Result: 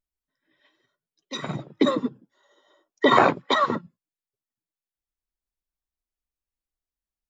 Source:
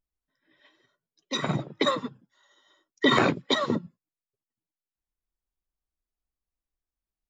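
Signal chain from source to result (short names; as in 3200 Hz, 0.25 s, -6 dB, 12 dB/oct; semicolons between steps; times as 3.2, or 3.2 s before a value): 1.8–3.8 bell 250 Hz -> 1400 Hz +13.5 dB 1.9 oct; gain -3.5 dB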